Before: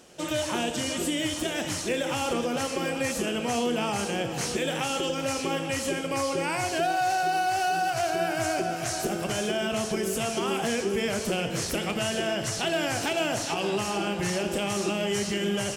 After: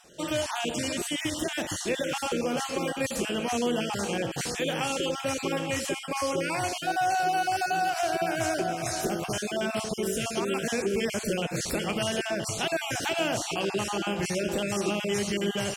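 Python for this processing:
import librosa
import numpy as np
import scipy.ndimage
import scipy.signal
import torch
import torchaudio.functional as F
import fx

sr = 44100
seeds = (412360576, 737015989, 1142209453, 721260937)

y = fx.spec_dropout(x, sr, seeds[0], share_pct=21)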